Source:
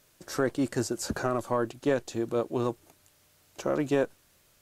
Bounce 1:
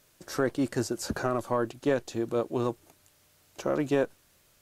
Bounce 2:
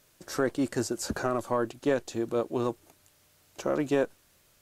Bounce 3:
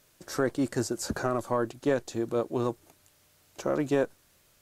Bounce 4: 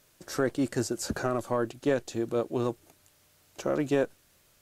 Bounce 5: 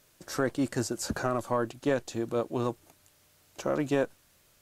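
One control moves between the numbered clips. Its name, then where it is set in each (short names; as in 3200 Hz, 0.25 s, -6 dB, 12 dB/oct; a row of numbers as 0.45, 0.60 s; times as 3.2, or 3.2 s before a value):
dynamic EQ, frequency: 7600, 130, 2800, 1000, 390 Hz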